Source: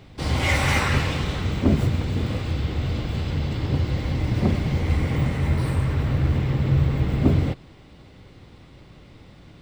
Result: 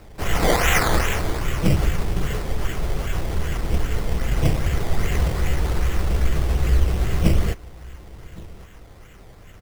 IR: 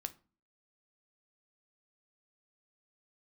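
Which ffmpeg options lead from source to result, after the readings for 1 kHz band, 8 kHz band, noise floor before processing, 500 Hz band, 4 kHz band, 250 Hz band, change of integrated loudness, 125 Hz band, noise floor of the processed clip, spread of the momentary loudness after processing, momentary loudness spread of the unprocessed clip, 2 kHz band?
+3.5 dB, n/a, -48 dBFS, +3.0 dB, +1.0 dB, -3.0 dB, 0.0 dB, -2.5 dB, -44 dBFS, 14 LU, 6 LU, +1.5 dB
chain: -af "aresample=8000,aresample=44100,equalizer=f=315:t=o:w=0.33:g=-11,equalizer=f=1k:t=o:w=0.33:g=-6,equalizer=f=3.15k:t=o:w=0.33:g=8,afreqshift=-72,aecho=1:1:1118:0.0841,acrusher=samples=13:mix=1:aa=0.000001:lfo=1:lforange=7.8:lforate=2.5,volume=3.5dB"

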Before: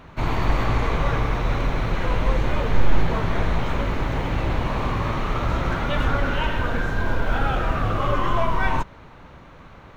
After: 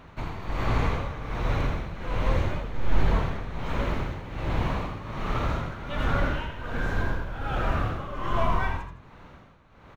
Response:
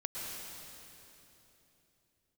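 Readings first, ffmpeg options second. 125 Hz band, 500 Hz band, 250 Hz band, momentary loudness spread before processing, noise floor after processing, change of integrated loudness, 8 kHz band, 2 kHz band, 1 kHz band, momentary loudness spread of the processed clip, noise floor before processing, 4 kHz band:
-4.5 dB, -6.0 dB, -5.5 dB, 3 LU, -51 dBFS, -5.5 dB, n/a, -6.0 dB, -6.0 dB, 8 LU, -45 dBFS, -6.5 dB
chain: -filter_complex "[0:a]tremolo=f=1.3:d=0.76,asplit=5[a][b][c][d][e];[b]adelay=81,afreqshift=43,volume=-7.5dB[f];[c]adelay=162,afreqshift=86,volume=-16.6dB[g];[d]adelay=243,afreqshift=129,volume=-25.7dB[h];[e]adelay=324,afreqshift=172,volume=-34.9dB[i];[a][f][g][h][i]amix=inputs=5:normalize=0,volume=-3.5dB"

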